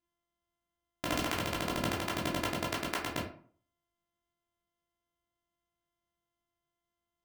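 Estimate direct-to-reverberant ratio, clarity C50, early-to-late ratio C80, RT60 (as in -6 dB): -4.0 dB, 6.0 dB, 10.0 dB, 0.50 s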